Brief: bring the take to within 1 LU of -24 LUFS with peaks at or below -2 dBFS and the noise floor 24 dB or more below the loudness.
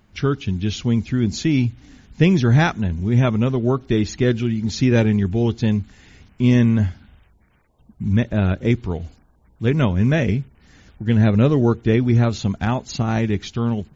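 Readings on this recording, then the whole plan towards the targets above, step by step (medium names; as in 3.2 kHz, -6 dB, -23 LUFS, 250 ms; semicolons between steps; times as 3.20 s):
loudness -19.5 LUFS; peak level -1.5 dBFS; loudness target -24.0 LUFS
-> trim -4.5 dB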